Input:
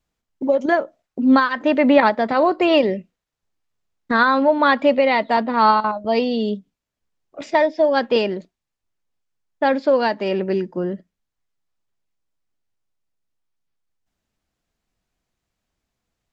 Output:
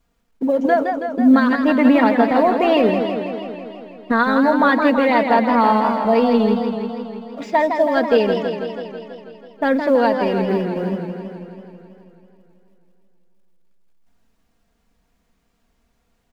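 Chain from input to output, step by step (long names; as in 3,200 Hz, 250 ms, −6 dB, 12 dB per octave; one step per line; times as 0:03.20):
mu-law and A-law mismatch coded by mu
comb filter 4.3 ms, depth 53%
in parallel at +2.5 dB: brickwall limiter −8 dBFS, peak gain reduction 7 dB
on the sum: high-shelf EQ 2,300 Hz −8 dB
feedback echo with a swinging delay time 163 ms, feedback 69%, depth 133 cents, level −6.5 dB
level −6.5 dB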